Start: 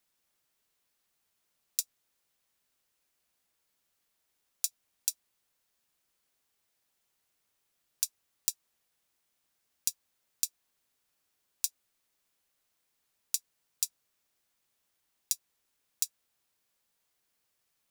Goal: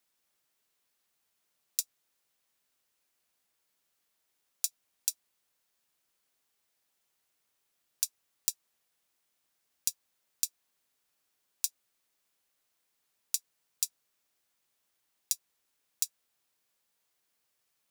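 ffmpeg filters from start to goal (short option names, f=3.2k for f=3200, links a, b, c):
-af "lowshelf=f=140:g=-6"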